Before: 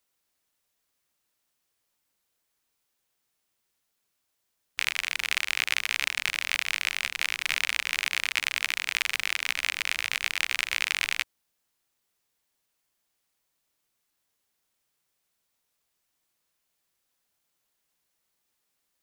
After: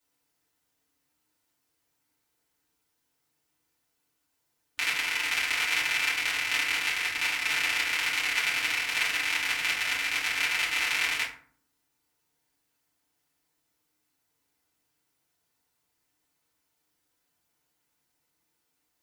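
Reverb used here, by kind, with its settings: FDN reverb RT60 0.5 s, low-frequency decay 1.5×, high-frequency decay 0.55×, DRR -9 dB; trim -7 dB

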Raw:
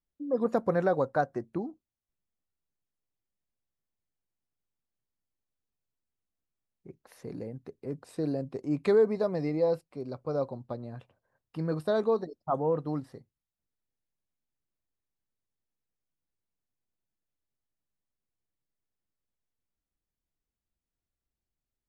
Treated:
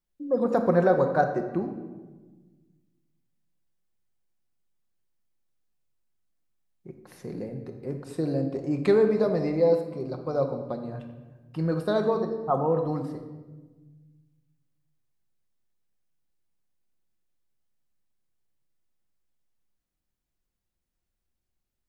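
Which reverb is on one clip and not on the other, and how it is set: simulated room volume 920 m³, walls mixed, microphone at 0.94 m; trim +3 dB

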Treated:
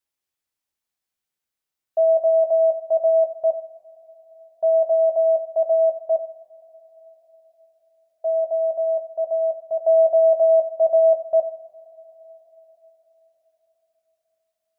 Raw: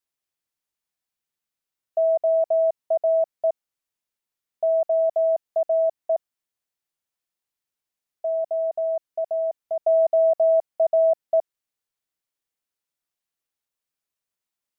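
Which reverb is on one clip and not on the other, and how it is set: two-slope reverb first 0.58 s, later 5 s, from -22 dB, DRR 4.5 dB

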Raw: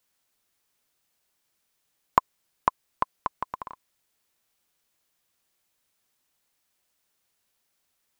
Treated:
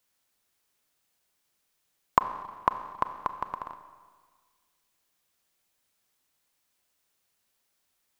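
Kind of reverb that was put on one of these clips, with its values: Schroeder reverb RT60 1.6 s, combs from 30 ms, DRR 9.5 dB; trim -1 dB

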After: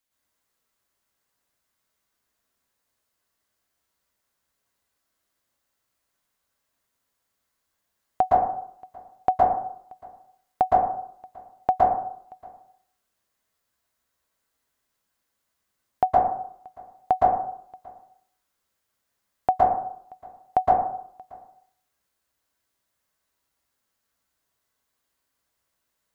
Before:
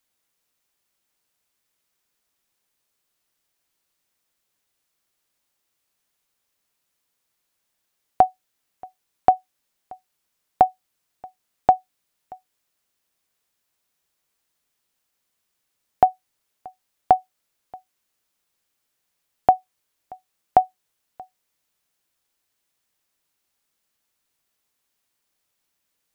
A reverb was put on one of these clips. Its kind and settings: plate-style reverb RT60 0.65 s, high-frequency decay 0.3×, pre-delay 105 ms, DRR -6.5 dB; trim -6.5 dB

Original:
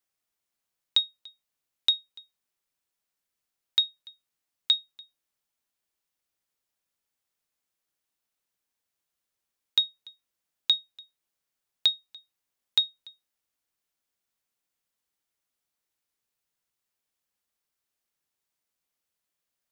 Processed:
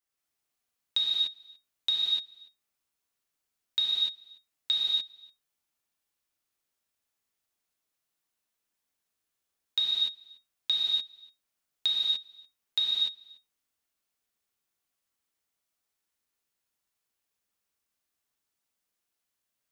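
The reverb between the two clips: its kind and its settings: gated-style reverb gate 320 ms flat, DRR -6.5 dB; trim -6.5 dB

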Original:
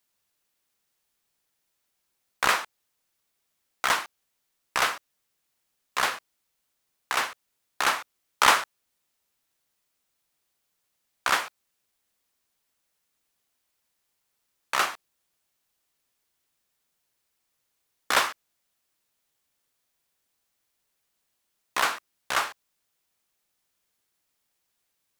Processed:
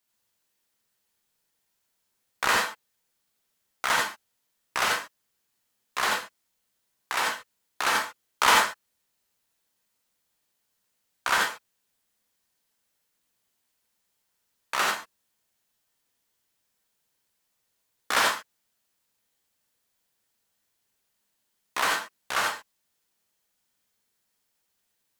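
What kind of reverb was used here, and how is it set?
gated-style reverb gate 110 ms rising, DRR -1 dB; trim -3 dB

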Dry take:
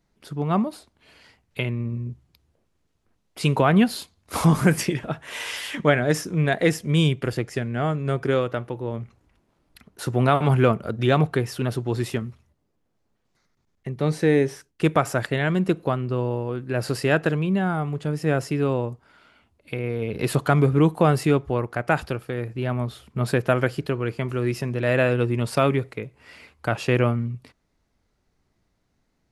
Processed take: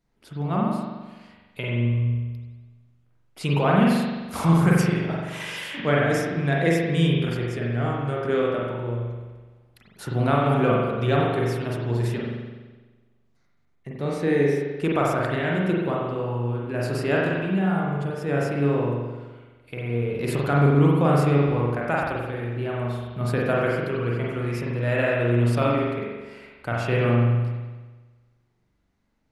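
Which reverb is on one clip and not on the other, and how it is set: spring tank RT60 1.3 s, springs 42 ms, chirp 60 ms, DRR -4 dB; trim -6 dB

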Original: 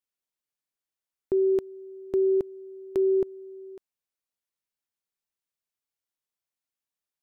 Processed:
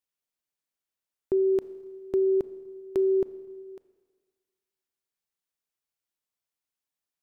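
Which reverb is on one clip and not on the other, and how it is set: Schroeder reverb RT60 1.6 s, combs from 27 ms, DRR 15 dB

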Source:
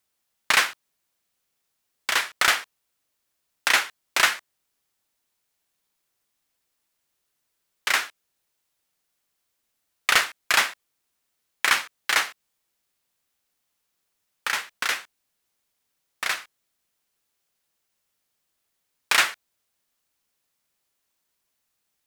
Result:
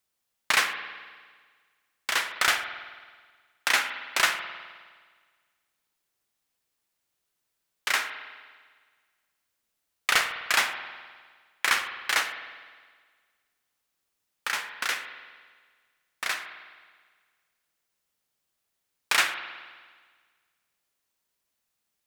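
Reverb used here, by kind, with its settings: spring tank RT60 1.6 s, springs 51 ms, chirp 50 ms, DRR 8 dB; trim -3.5 dB

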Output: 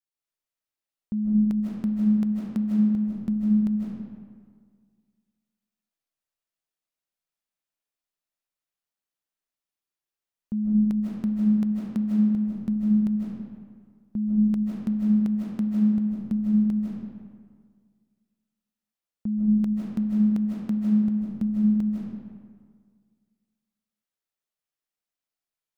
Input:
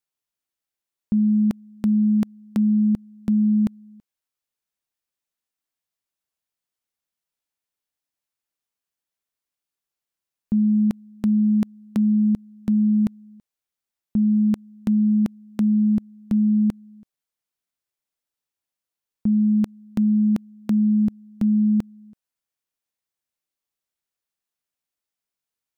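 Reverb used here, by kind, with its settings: algorithmic reverb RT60 1.8 s, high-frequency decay 0.6×, pre-delay 115 ms, DRR -3.5 dB; trim -8 dB

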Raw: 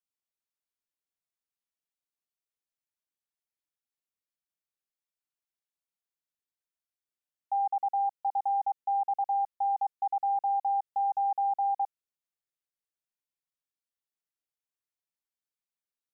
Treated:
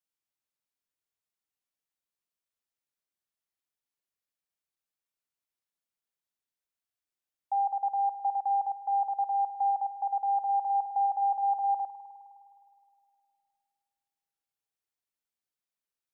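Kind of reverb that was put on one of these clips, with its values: spring tank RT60 2.6 s, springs 51 ms, chirp 20 ms, DRR 9 dB

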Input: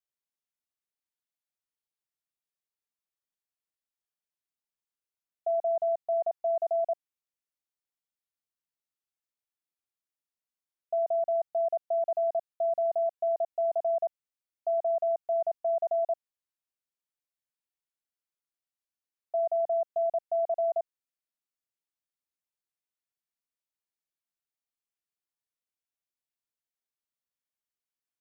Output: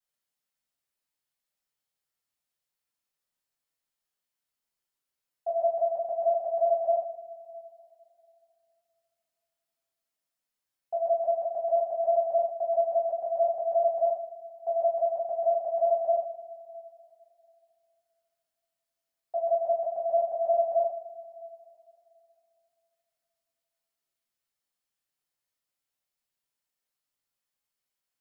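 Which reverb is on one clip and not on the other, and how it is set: two-slope reverb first 0.51 s, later 3 s, from -22 dB, DRR -9 dB; trim -3.5 dB

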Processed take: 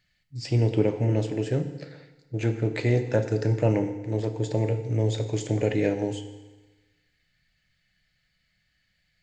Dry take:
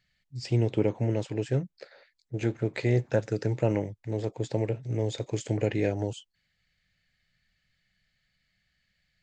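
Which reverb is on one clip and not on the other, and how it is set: FDN reverb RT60 1.2 s, low-frequency decay 1×, high-frequency decay 0.95×, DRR 7 dB; trim +2 dB

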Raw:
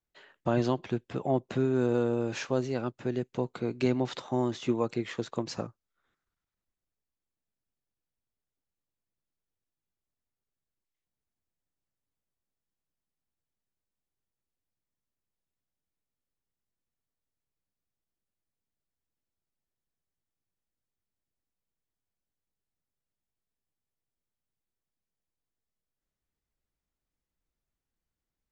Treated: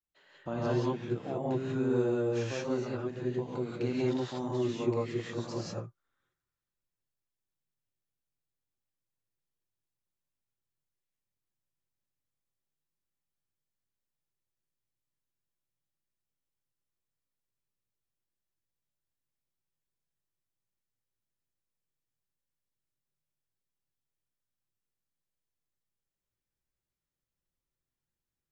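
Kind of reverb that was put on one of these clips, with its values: gated-style reverb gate 210 ms rising, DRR -6.5 dB; trim -10.5 dB

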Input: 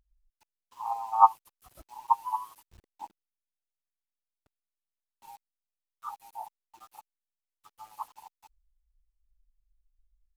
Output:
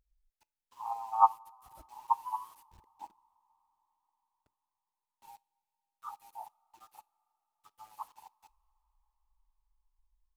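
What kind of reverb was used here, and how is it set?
two-slope reverb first 0.24 s, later 4.7 s, from -21 dB, DRR 19 dB; trim -4.5 dB

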